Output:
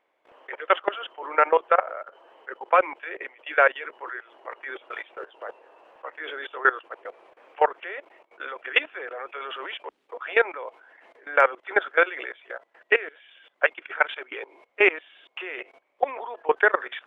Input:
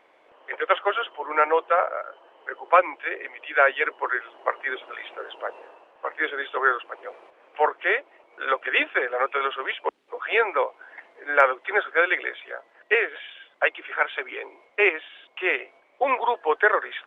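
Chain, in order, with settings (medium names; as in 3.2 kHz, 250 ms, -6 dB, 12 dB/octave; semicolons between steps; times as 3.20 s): 16.11–16.56 s: treble shelf 3.2 kHz -> 2.8 kHz -8 dB; level held to a coarse grid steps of 19 dB; trim +3.5 dB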